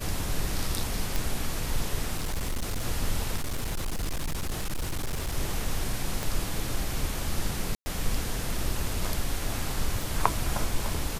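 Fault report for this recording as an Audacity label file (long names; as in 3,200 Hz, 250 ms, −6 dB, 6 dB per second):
1.160000	1.160000	click
2.170000	2.860000	clipping −25.5 dBFS
3.350000	5.370000	clipping −26 dBFS
6.230000	6.230000	click
7.750000	7.860000	drop-out 110 ms
10.020000	10.020000	click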